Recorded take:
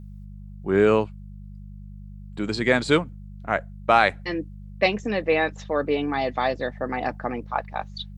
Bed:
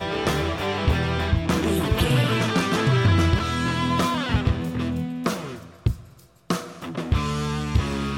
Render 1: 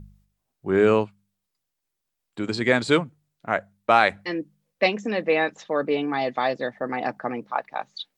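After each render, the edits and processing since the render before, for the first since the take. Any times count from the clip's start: de-hum 50 Hz, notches 4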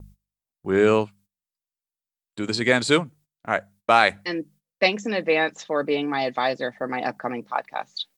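gate -50 dBFS, range -19 dB; treble shelf 4.3 kHz +10 dB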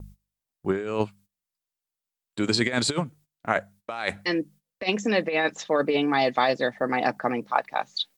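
compressor with a negative ratio -22 dBFS, ratio -0.5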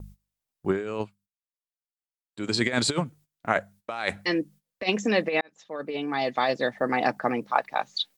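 0.79–2.67 s: dip -17.5 dB, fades 0.39 s; 5.41–6.79 s: fade in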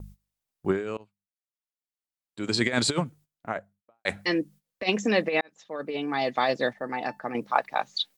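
0.97–2.43 s: fade in, from -23.5 dB; 3.00–4.05 s: studio fade out; 6.73–7.35 s: feedback comb 880 Hz, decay 0.17 s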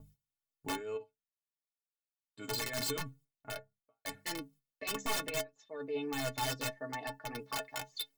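integer overflow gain 18.5 dB; inharmonic resonator 130 Hz, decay 0.24 s, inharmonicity 0.03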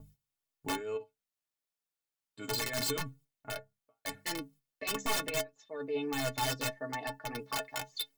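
trim +2.5 dB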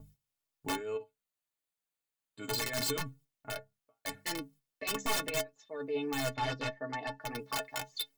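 0.82–2.51 s: band-stop 5.4 kHz, Q 5.4; 6.33–7.19 s: low-pass 2.8 kHz -> 6.1 kHz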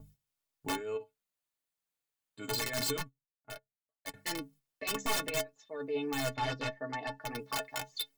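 2.97–4.14 s: upward expansion 2.5:1, over -50 dBFS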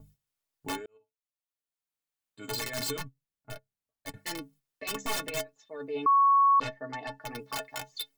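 0.86–2.54 s: fade in; 3.04–4.18 s: bass shelf 290 Hz +11.5 dB; 6.06–6.60 s: bleep 1.11 kHz -18 dBFS

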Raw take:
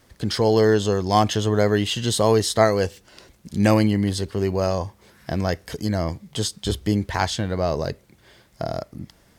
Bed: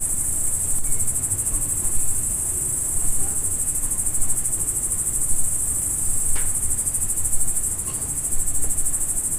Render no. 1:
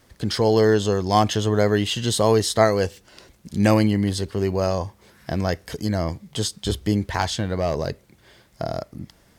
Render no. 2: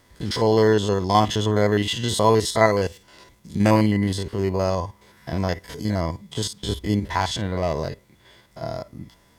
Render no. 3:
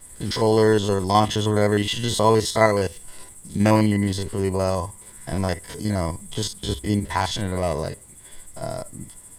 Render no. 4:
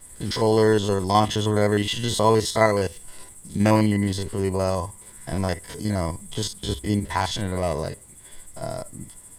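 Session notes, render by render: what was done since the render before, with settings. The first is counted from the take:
7.21–7.87 s: hard clipper -14.5 dBFS
spectrogram pixelated in time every 50 ms; small resonant body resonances 990/2000/3400 Hz, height 12 dB, ringing for 70 ms
add bed -21 dB
trim -1 dB; peak limiter -3 dBFS, peak gain reduction 1 dB

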